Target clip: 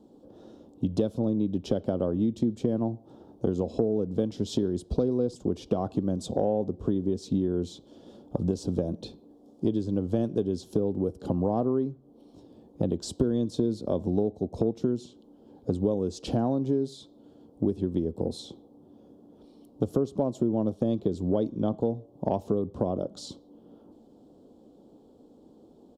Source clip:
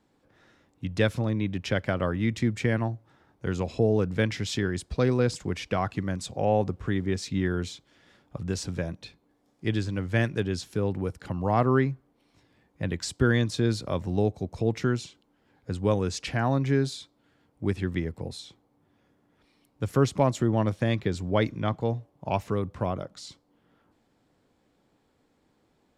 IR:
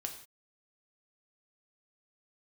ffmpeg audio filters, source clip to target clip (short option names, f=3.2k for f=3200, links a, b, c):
-filter_complex "[0:a]firequalizer=gain_entry='entry(140,0);entry(220,10);entry(470,9);entry(2000,-26);entry(3200,-4)':delay=0.05:min_phase=1,acompressor=threshold=-30dB:ratio=6,asplit=2[a][b];[1:a]atrim=start_sample=2205,lowpass=3.7k[c];[b][c]afir=irnorm=-1:irlink=0,volume=-14dB[d];[a][d]amix=inputs=2:normalize=0,volume=5dB"